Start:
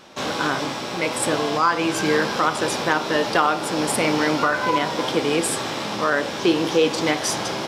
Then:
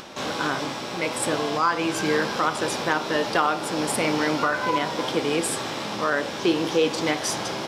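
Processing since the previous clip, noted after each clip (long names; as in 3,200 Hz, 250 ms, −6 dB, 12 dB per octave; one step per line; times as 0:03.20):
upward compression, threshold −30 dBFS
level −3 dB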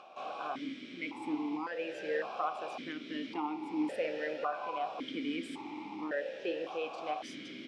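formant filter that steps through the vowels 1.8 Hz
level −2 dB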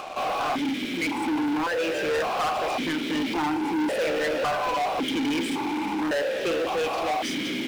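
leveller curve on the samples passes 5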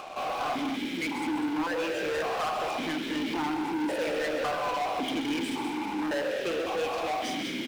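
loudspeakers that aren't time-aligned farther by 45 metres −10 dB, 69 metres −9 dB
level −5 dB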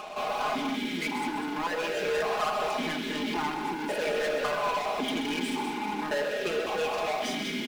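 comb filter 4.8 ms, depth 67%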